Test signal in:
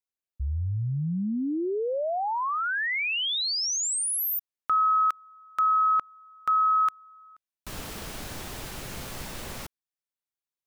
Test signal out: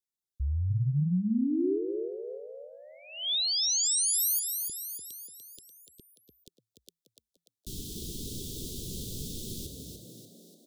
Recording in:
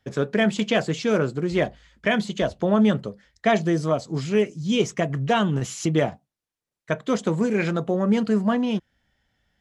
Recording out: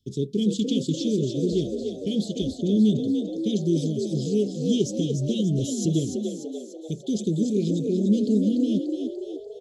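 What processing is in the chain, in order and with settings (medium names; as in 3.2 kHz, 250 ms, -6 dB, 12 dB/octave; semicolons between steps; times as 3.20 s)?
Chebyshev band-stop 400–3400 Hz, order 4; on a send: frequency-shifting echo 293 ms, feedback 53%, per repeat +55 Hz, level -6 dB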